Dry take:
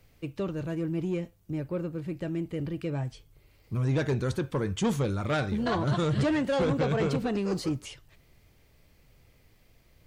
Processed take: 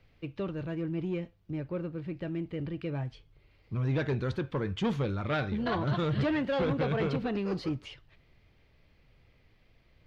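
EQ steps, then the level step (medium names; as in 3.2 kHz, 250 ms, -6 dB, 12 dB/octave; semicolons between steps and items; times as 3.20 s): distance through air 330 m; treble shelf 2.4 kHz +11.5 dB; -2.5 dB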